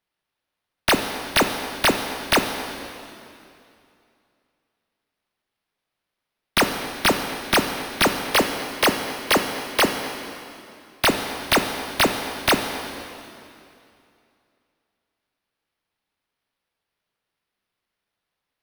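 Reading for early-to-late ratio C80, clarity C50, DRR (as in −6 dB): 7.0 dB, 6.0 dB, 5.0 dB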